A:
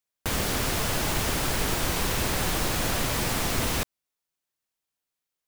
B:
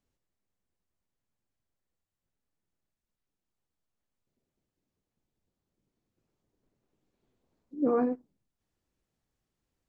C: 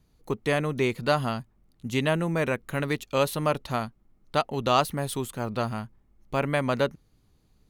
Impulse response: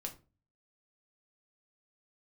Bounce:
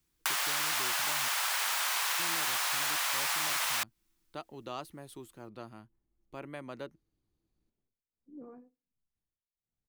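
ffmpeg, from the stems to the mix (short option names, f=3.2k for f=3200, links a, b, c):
-filter_complex "[0:a]highpass=f=880:w=0.5412,highpass=f=880:w=1.3066,acontrast=61,volume=0.5dB[a];[1:a]lowshelf=f=180:g=9.5,acompressor=threshold=-33dB:ratio=4,tremolo=f=1.4:d=0.95,adelay=550,volume=-14.5dB,asplit=2[b][c];[c]volume=-12.5dB[d];[2:a]equalizer=f=330:t=o:w=0.22:g=12.5,volume=-18dB,asplit=3[e][f][g];[e]atrim=end=1.28,asetpts=PTS-STARTPTS,afade=t=out:st=1.276:d=0.004:c=hsin[h];[f]atrim=start=1.28:end=2.19,asetpts=PTS-STARTPTS,volume=0[i];[g]atrim=start=2.19,asetpts=PTS-STARTPTS,afade=t=in:d=0.004:c=hsin[j];[h][i][j]concat=n=3:v=0:a=1[k];[3:a]atrim=start_sample=2205[l];[d][l]afir=irnorm=-1:irlink=0[m];[a][b][k][m]amix=inputs=4:normalize=0,acrossover=split=170|3900[n][o][p];[n]acompressor=threshold=-57dB:ratio=4[q];[o]acompressor=threshold=-33dB:ratio=4[r];[p]acompressor=threshold=-34dB:ratio=4[s];[q][r][s]amix=inputs=3:normalize=0"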